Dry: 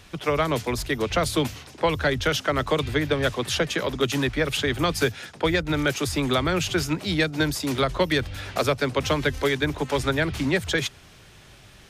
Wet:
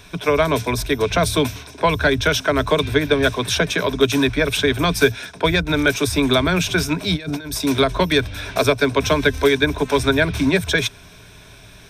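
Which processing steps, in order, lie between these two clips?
rippled EQ curve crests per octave 1.6, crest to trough 9 dB; 7.16–7.58 s: compressor with a negative ratio -33 dBFS, ratio -1; trim +4.5 dB

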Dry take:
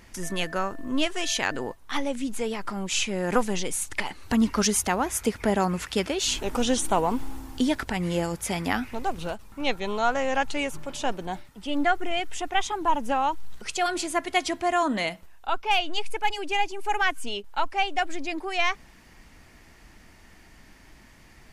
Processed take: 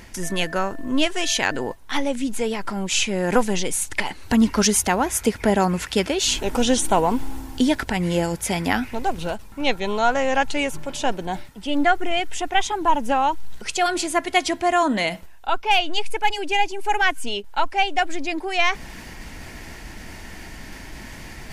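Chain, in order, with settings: band-stop 1.2 kHz, Q 8.9; reverse; upward compressor, threshold -31 dBFS; reverse; trim +5 dB

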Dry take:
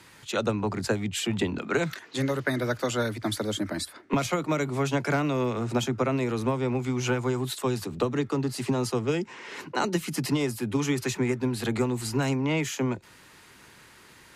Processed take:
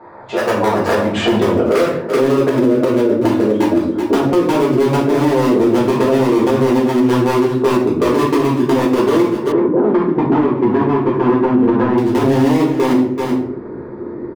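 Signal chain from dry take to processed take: local Wiener filter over 15 samples; low-pass sweep 730 Hz -> 350 Hz, 1.12–2.57 s; overload inside the chain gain 20 dB; tilt EQ +4.5 dB/octave; delay 380 ms -18.5 dB; compression 5:1, threshold -45 dBFS, peak gain reduction 18.5 dB; simulated room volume 85 m³, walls mixed, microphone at 1.7 m; level rider gain up to 13 dB; 9.52–11.98 s: low-pass 1.6 kHz 12 dB/octave; loudness maximiser +18 dB; trim -4 dB

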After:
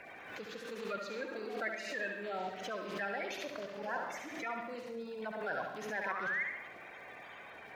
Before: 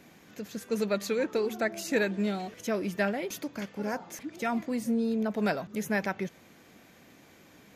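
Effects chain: coarse spectral quantiser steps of 30 dB; treble shelf 11 kHz -5 dB; painted sound rise, 6.04–6.43 s, 940–2200 Hz -39 dBFS; reverse; compression 10:1, threshold -41 dBFS, peak gain reduction 19 dB; reverse; three-band isolator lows -15 dB, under 520 Hz, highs -19 dB, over 4.2 kHz; flutter echo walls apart 11.9 m, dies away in 0.71 s; on a send at -10.5 dB: reverberation RT60 0.35 s, pre-delay 89 ms; on the sum: crackle 450 per s -68 dBFS; swell ahead of each attack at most 50 dB/s; trim +7.5 dB

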